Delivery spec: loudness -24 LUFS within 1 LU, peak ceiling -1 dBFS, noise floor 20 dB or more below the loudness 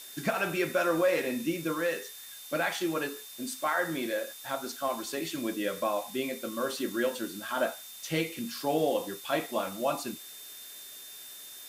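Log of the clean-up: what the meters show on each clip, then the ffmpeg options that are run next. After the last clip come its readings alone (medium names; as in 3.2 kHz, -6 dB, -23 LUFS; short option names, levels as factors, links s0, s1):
steady tone 3.6 kHz; tone level -50 dBFS; noise floor -46 dBFS; noise floor target -52 dBFS; loudness -31.5 LUFS; peak level -15.5 dBFS; loudness target -24.0 LUFS
-> -af "bandreject=f=3600:w=30"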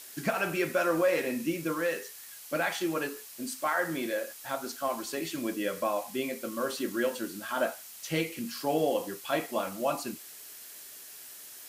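steady tone not found; noise floor -47 dBFS; noise floor target -52 dBFS
-> -af "afftdn=nr=6:nf=-47"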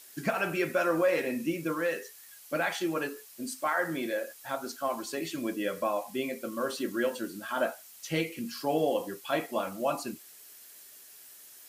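noise floor -52 dBFS; loudness -32.0 LUFS; peak level -16.0 dBFS; loudness target -24.0 LUFS
-> -af "volume=2.51"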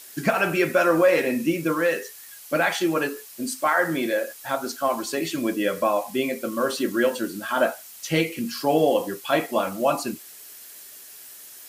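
loudness -24.0 LUFS; peak level -8.0 dBFS; noise floor -44 dBFS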